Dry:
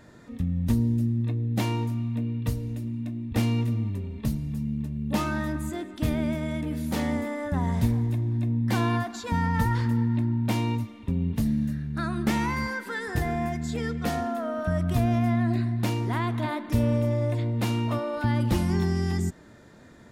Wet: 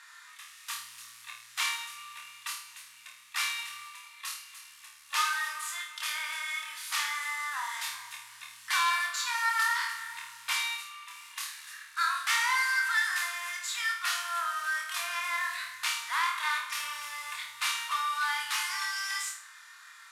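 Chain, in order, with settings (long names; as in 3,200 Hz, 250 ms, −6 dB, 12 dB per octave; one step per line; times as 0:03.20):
variable-slope delta modulation 64 kbit/s
elliptic high-pass filter 1,100 Hz, stop band 60 dB
flutter between parallel walls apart 4.5 metres, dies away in 0.46 s
saturating transformer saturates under 2,600 Hz
level +6 dB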